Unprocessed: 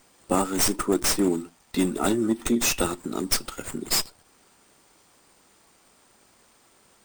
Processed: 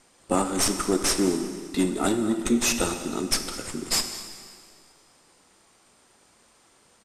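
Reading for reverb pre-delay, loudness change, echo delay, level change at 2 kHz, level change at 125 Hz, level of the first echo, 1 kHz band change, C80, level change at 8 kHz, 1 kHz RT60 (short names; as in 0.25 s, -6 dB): 12 ms, -0.5 dB, 0.21 s, 0.0 dB, -0.5 dB, -18.5 dB, 0.0 dB, 9.0 dB, +0.5 dB, 2.1 s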